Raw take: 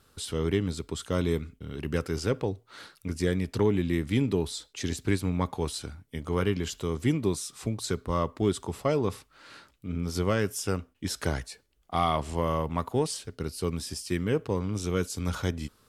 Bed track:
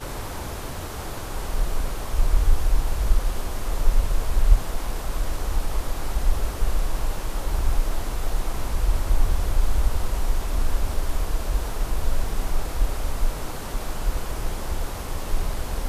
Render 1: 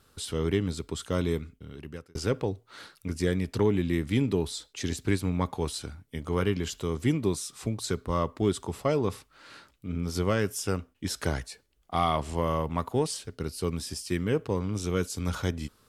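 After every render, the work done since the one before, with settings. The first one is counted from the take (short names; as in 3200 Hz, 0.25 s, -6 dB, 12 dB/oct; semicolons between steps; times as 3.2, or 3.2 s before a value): 0.93–2.15 fade out equal-power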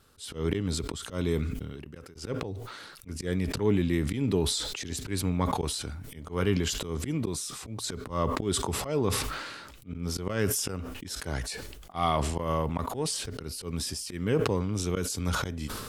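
auto swell 0.127 s; sustainer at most 36 dB/s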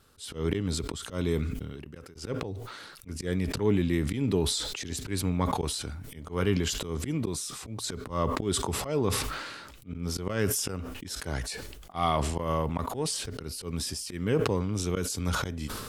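nothing audible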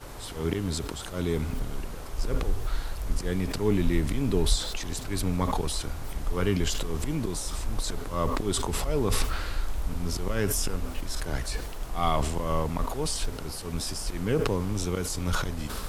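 add bed track -9.5 dB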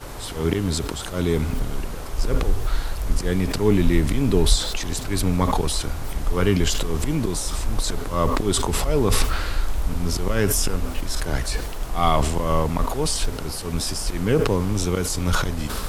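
gain +6.5 dB; limiter -3 dBFS, peak gain reduction 2 dB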